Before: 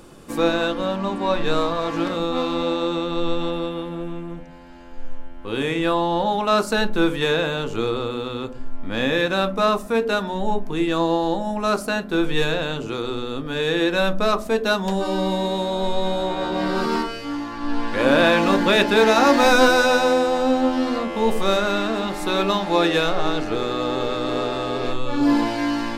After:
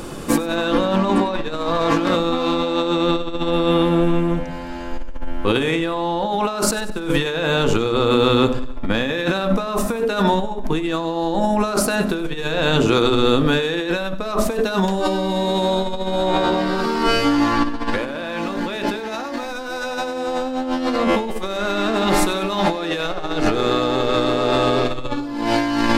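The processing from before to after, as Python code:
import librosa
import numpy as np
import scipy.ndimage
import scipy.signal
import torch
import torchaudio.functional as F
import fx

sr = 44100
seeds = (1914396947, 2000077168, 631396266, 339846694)

y = fx.over_compress(x, sr, threshold_db=-28.0, ratio=-1.0)
y = fx.echo_feedback(y, sr, ms=96, feedback_pct=51, wet_db=-17.5)
y = F.gain(torch.from_numpy(y), 7.5).numpy()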